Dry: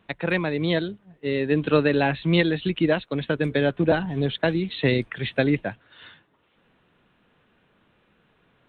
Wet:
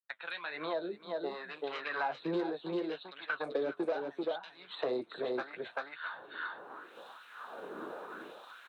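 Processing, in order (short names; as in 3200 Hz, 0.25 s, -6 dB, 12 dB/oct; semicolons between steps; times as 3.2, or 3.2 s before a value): opening faded in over 1.50 s; expander -58 dBFS; band shelf 2500 Hz -15.5 dB 1.1 oct; in parallel at -2 dB: compressor, threshold -32 dBFS, peak gain reduction 17 dB; on the sum: tube stage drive 15 dB, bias 0.35; flange 1.6 Hz, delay 6.8 ms, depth 6.4 ms, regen -45%; LFO high-pass sine 0.74 Hz 340–3400 Hz; on a send: echo 0.39 s -5.5 dB; on the sum: three-band squash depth 100%; gain -7 dB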